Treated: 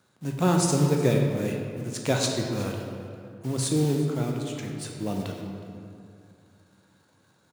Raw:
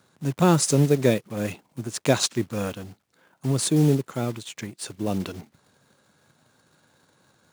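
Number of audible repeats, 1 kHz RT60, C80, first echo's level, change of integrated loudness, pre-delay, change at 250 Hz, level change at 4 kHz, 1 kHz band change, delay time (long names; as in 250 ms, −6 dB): 1, 2.3 s, 4.0 dB, −19.5 dB, −3.0 dB, 11 ms, −2.5 dB, −3.0 dB, −2.0 dB, 367 ms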